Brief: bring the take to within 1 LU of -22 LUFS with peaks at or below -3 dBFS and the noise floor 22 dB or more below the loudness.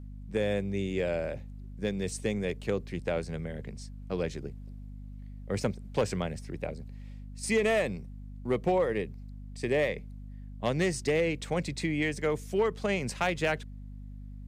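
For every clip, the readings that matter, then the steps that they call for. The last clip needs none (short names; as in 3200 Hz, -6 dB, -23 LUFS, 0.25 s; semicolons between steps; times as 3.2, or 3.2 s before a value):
clipped 0.2%; flat tops at -19.0 dBFS; hum 50 Hz; harmonics up to 250 Hz; hum level -40 dBFS; loudness -31.5 LUFS; peak -19.0 dBFS; loudness target -22.0 LUFS
-> clip repair -19 dBFS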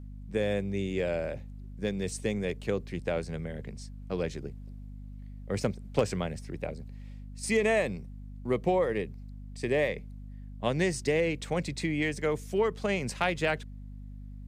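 clipped 0.0%; hum 50 Hz; harmonics up to 250 Hz; hum level -40 dBFS
-> de-hum 50 Hz, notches 5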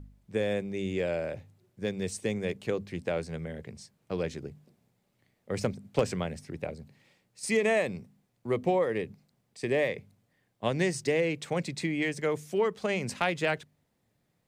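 hum none; loudness -31.5 LUFS; peak -11.0 dBFS; loudness target -22.0 LUFS
-> gain +9.5 dB; limiter -3 dBFS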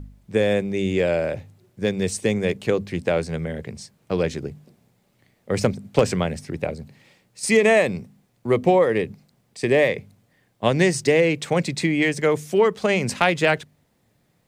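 loudness -22.0 LUFS; peak -3.0 dBFS; noise floor -65 dBFS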